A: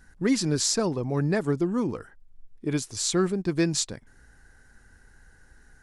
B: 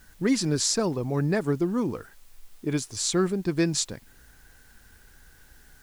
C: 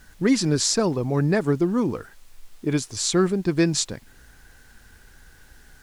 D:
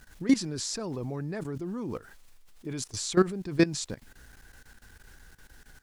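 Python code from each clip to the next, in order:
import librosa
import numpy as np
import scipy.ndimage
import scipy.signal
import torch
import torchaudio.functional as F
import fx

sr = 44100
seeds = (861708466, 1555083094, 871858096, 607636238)

y1 = fx.quant_dither(x, sr, seeds[0], bits=10, dither='triangular')
y2 = fx.high_shelf(y1, sr, hz=12000.0, db=-9.0)
y2 = F.gain(torch.from_numpy(y2), 4.0).numpy()
y3 = fx.level_steps(y2, sr, step_db=17)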